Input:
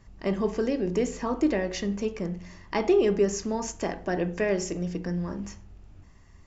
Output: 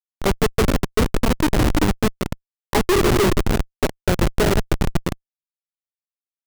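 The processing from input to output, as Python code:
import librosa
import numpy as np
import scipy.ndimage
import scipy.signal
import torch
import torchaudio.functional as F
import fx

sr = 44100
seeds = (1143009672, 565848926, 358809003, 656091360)

y = scipy.signal.sosfilt(scipy.signal.butter(2, 72.0, 'highpass', fs=sr, output='sos'), x)
y = fx.transient(y, sr, attack_db=11, sustain_db=-7)
y = fx.echo_thinned(y, sr, ms=164, feedback_pct=60, hz=320.0, wet_db=-9.0)
y = fx.rev_gated(y, sr, seeds[0], gate_ms=450, shape='rising', drr_db=6.5)
y = fx.schmitt(y, sr, flips_db=-19.0)
y = fx.upward_expand(y, sr, threshold_db=-36.0, expansion=1.5)
y = F.gain(torch.from_numpy(y), 8.0).numpy()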